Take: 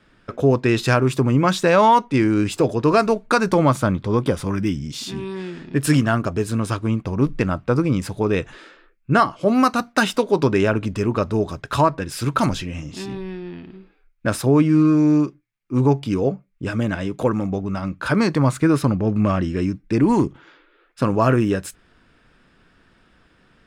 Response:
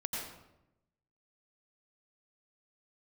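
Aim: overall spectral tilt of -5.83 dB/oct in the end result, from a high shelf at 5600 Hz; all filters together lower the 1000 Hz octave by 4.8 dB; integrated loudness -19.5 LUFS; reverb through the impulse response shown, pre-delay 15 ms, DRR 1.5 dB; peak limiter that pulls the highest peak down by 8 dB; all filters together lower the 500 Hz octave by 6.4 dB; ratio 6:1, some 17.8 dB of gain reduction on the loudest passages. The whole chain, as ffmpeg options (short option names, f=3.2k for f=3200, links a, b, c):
-filter_complex "[0:a]equalizer=f=500:t=o:g=-7.5,equalizer=f=1k:t=o:g=-4,highshelf=f=5.6k:g=3,acompressor=threshold=-34dB:ratio=6,alimiter=level_in=3.5dB:limit=-24dB:level=0:latency=1,volume=-3.5dB,asplit=2[a][b];[1:a]atrim=start_sample=2205,adelay=15[c];[b][c]afir=irnorm=-1:irlink=0,volume=-4dB[d];[a][d]amix=inputs=2:normalize=0,volume=16dB"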